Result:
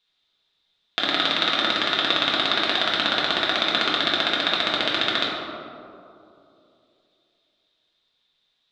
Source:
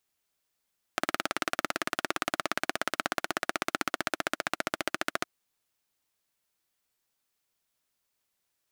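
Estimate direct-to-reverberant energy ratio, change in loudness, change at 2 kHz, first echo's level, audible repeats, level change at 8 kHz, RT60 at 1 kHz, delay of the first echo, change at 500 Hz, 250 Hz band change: -5.0 dB, +11.5 dB, +8.5 dB, no echo, no echo, -4.5 dB, 2.5 s, no echo, +7.5 dB, +7.5 dB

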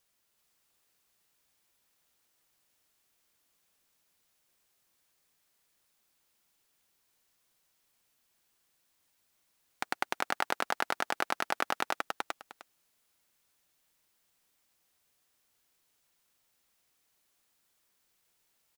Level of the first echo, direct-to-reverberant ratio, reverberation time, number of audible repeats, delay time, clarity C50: -3.0 dB, no reverb, no reverb, 2, 379 ms, no reverb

